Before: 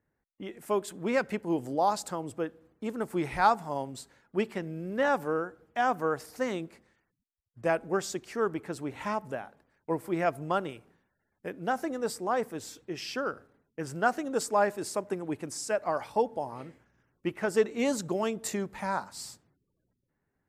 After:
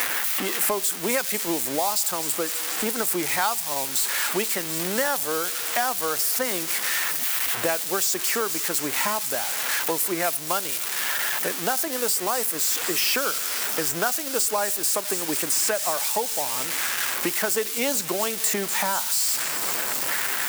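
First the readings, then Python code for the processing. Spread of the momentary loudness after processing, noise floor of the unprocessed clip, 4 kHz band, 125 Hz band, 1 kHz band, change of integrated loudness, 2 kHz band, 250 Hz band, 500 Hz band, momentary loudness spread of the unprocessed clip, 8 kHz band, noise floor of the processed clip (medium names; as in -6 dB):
3 LU, -81 dBFS, +17.5 dB, -1.0 dB, +2.5 dB, +8.5 dB, +9.5 dB, +1.0 dB, +1.5 dB, 14 LU, +20.0 dB, -30 dBFS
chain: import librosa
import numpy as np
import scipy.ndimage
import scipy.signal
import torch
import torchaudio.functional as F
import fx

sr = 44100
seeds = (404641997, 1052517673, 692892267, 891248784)

p1 = x + 0.5 * 10.0 ** (-22.5 / 20.0) * np.diff(np.sign(x), prepend=np.sign(x[:1]))
p2 = fx.low_shelf(p1, sr, hz=440.0, db=-10.5)
p3 = fx.quant_dither(p2, sr, seeds[0], bits=6, dither='none')
p4 = p2 + F.gain(torch.from_numpy(p3), -12.0).numpy()
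p5 = fx.low_shelf(p4, sr, hz=73.0, db=-7.5)
p6 = p5 + fx.echo_wet_highpass(p5, sr, ms=245, feedback_pct=82, hz=3800.0, wet_db=-12.0, dry=0)
p7 = fx.band_squash(p6, sr, depth_pct=100)
y = F.gain(torch.from_numpy(p7), 4.0).numpy()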